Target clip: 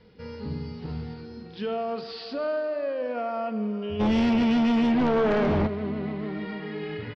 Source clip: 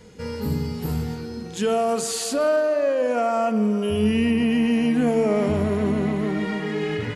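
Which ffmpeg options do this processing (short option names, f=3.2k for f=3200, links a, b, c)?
-filter_complex "[0:a]aresample=11025,aresample=44100,asplit=3[a][b][c];[a]afade=t=out:st=3.99:d=0.02[d];[b]aeval=exprs='0.335*(cos(1*acos(clip(val(0)/0.335,-1,1)))-cos(1*PI/2))+0.168*(cos(5*acos(clip(val(0)/0.335,-1,1)))-cos(5*PI/2))':c=same,afade=t=in:st=3.99:d=0.02,afade=t=out:st=5.66:d=0.02[e];[c]afade=t=in:st=5.66:d=0.02[f];[d][e][f]amix=inputs=3:normalize=0,asplit=2[g][h];[h]adelay=170,highpass=300,lowpass=3.4k,asoftclip=type=hard:threshold=-18dB,volume=-27dB[i];[g][i]amix=inputs=2:normalize=0,volume=-8dB"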